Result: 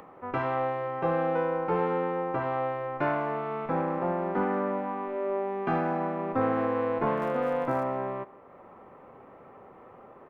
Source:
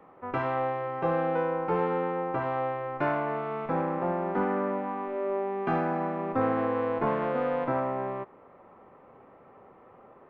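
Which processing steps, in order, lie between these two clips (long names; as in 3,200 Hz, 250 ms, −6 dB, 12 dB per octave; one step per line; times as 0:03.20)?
far-end echo of a speakerphone 170 ms, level −20 dB
0:07.16–0:07.82: surface crackle 130 per second −42 dBFS
upward compression, threshold −44 dBFS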